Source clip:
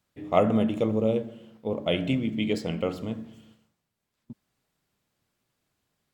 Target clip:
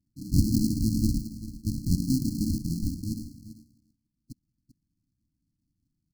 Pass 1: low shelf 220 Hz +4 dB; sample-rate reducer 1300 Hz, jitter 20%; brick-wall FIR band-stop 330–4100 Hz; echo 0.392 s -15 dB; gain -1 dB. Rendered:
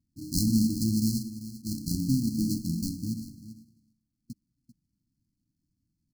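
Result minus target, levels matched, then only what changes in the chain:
sample-rate reducer: distortion -13 dB
change: sample-rate reducer 520 Hz, jitter 20%

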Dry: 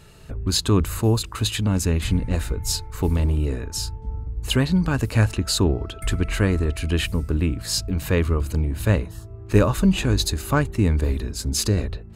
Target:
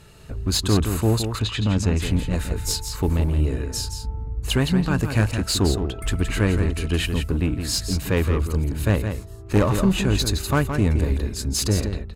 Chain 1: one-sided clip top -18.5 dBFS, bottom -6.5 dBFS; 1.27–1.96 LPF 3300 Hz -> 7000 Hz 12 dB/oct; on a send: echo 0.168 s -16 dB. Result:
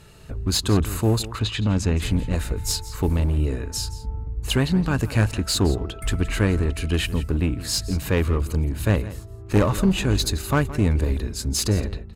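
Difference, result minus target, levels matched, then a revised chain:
echo-to-direct -8.5 dB
one-sided clip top -18.5 dBFS, bottom -6.5 dBFS; 1.27–1.96 LPF 3300 Hz -> 7000 Hz 12 dB/oct; on a send: echo 0.168 s -7.5 dB

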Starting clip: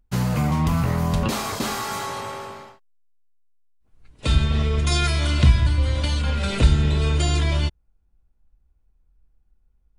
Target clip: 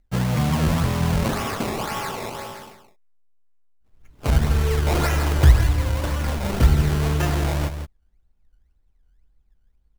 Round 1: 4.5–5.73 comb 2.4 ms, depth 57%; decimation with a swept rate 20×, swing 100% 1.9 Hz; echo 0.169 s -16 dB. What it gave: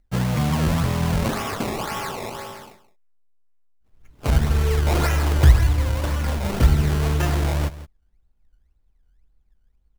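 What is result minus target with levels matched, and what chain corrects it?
echo-to-direct -6.5 dB
4.5–5.73 comb 2.4 ms, depth 57%; decimation with a swept rate 20×, swing 100% 1.9 Hz; echo 0.169 s -9.5 dB

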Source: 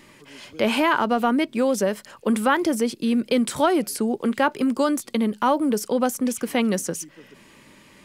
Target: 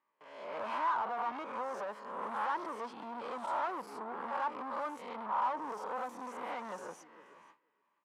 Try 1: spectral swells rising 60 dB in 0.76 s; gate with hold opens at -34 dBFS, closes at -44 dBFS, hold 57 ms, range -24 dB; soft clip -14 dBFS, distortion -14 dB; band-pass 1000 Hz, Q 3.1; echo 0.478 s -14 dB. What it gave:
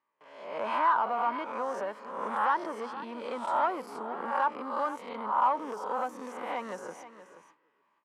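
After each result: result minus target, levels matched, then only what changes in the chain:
soft clip: distortion -8 dB; echo-to-direct +7.5 dB
change: soft clip -25.5 dBFS, distortion -6 dB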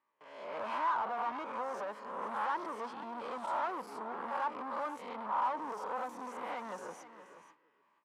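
echo-to-direct +7.5 dB
change: echo 0.478 s -21.5 dB

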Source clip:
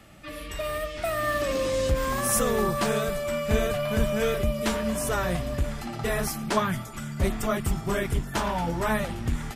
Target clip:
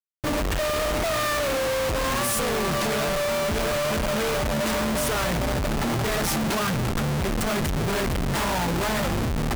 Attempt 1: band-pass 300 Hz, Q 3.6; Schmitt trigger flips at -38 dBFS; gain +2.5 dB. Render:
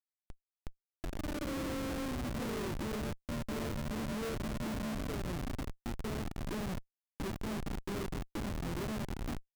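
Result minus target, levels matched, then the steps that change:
250 Hz band +4.0 dB
remove: band-pass 300 Hz, Q 3.6

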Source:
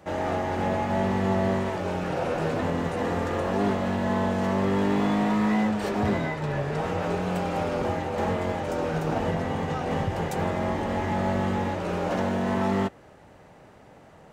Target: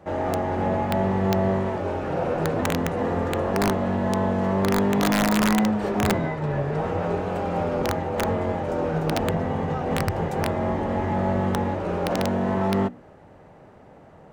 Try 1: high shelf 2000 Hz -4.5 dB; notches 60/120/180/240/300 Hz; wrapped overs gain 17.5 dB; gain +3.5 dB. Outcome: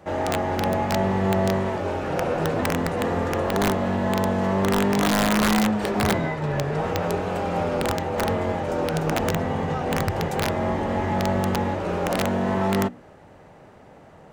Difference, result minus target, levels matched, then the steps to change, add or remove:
4000 Hz band +3.0 dB
change: high shelf 2000 Hz -11.5 dB

